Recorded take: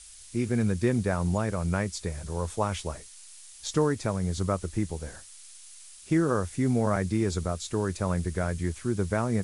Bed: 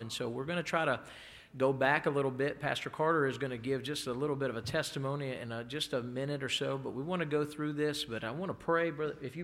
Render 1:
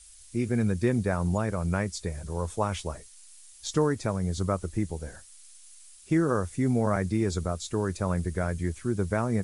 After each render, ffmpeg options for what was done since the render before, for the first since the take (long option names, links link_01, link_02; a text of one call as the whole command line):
ffmpeg -i in.wav -af "afftdn=noise_reduction=6:noise_floor=-49" out.wav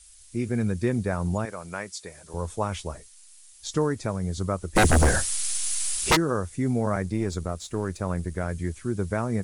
ffmpeg -i in.wav -filter_complex "[0:a]asettb=1/sr,asplit=3[link_01][link_02][link_03];[link_01]atrim=end=1.454[link_04];[link_02]atrim=start=1.45:end=2.34,asetpts=PTS-STARTPTS,afade=type=in:duration=0.004:curve=qsin,afade=type=out:start_time=0.886:duration=0.004:curve=qsin,highpass=frequency=680:poles=1[link_05];[link_03]atrim=start=2.336[link_06];[link_04][link_05]acrossfade=duration=0.004:curve1=hsin:curve2=qsin[link_07];[link_07][link_06]acrossfade=duration=0.004:curve1=qsin:curve2=hsin,asplit=3[link_08][link_09][link_10];[link_08]afade=type=out:start_time=4.75:duration=0.02[link_11];[link_09]aeval=exprs='0.211*sin(PI/2*10*val(0)/0.211)':channel_layout=same,afade=type=in:start_time=4.75:duration=0.02,afade=type=out:start_time=6.15:duration=0.02[link_12];[link_10]afade=type=in:start_time=6.15:duration=0.02[link_13];[link_11][link_12][link_13]amix=inputs=3:normalize=0,asettb=1/sr,asplit=3[link_14][link_15][link_16];[link_14]atrim=end=7.024[link_17];[link_15]atrim=start=7.02:end=8.5,asetpts=PTS-STARTPTS,afade=type=in:duration=0.004:curve=qsin,afade=type=out:start_time=1.476:duration=0.004:curve=qsin,aeval=exprs='if(lt(val(0),0),0.708*val(0),val(0))':channel_layout=same[link_18];[link_16]atrim=start=8.496[link_19];[link_17][link_18]acrossfade=duration=0.004:curve1=hsin:curve2=qsin[link_20];[link_20][link_19]acrossfade=duration=0.004:curve1=qsin:curve2=hsin" out.wav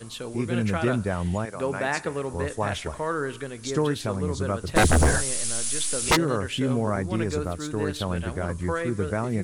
ffmpeg -i in.wav -i bed.wav -filter_complex "[1:a]volume=1.5dB[link_01];[0:a][link_01]amix=inputs=2:normalize=0" out.wav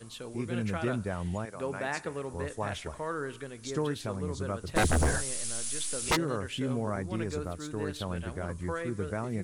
ffmpeg -i in.wav -af "volume=-7dB" out.wav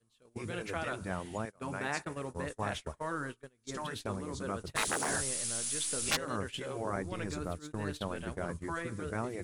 ffmpeg -i in.wav -af "agate=range=-27dB:threshold=-37dB:ratio=16:detection=peak,afftfilt=real='re*lt(hypot(re,im),0.141)':imag='im*lt(hypot(re,im),0.141)':win_size=1024:overlap=0.75" out.wav